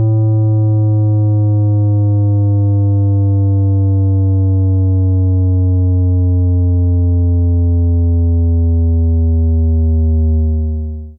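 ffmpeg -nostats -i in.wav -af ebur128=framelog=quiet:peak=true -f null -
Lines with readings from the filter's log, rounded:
Integrated loudness:
  I:         -13.0 LUFS
  Threshold: -23.0 LUFS
Loudness range:
  LRA:         0.5 LU
  Threshold: -32.9 LUFS
  LRA low:   -13.1 LUFS
  LRA high:  -12.6 LUFS
True peak:
  Peak:      -10.0 dBFS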